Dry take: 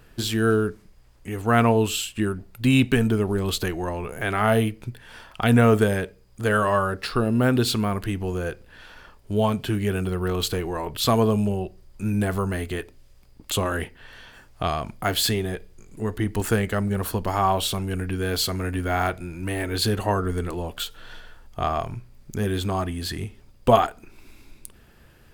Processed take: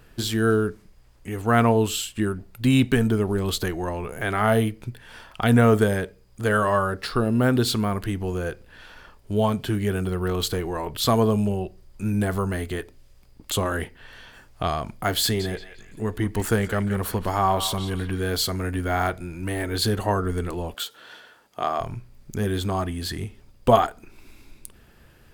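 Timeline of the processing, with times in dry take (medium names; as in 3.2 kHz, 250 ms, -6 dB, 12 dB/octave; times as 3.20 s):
15.22–18.34 s: band-passed feedback delay 175 ms, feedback 43%, band-pass 2 kHz, level -8.5 dB
20.74–21.80 s: high-pass 270 Hz
whole clip: dynamic bell 2.6 kHz, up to -6 dB, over -48 dBFS, Q 5.6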